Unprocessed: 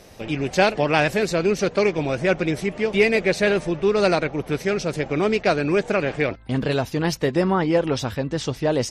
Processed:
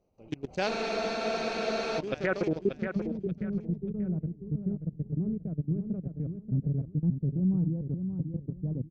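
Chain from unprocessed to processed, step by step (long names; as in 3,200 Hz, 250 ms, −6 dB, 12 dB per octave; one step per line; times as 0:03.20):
adaptive Wiener filter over 25 samples
output level in coarse steps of 23 dB
low-pass filter sweep 6,200 Hz → 170 Hz, 0:01.95–0:02.87
repeating echo 584 ms, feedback 25%, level −7.5 dB
frozen spectrum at 0:00.70, 1.28 s
level −5 dB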